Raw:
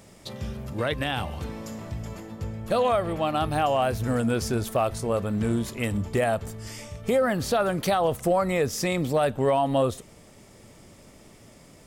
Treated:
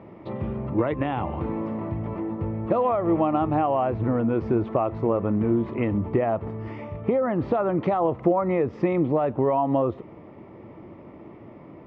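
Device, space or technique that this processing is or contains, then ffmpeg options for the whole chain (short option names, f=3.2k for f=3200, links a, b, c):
bass amplifier: -af "acompressor=threshold=-27dB:ratio=5,highpass=88,equalizer=f=330:t=q:w=4:g=9,equalizer=f=980:t=q:w=4:g=5,equalizer=f=1.6k:t=q:w=4:g=-10,lowpass=f=2k:w=0.5412,lowpass=f=2k:w=1.3066,volume=6dB"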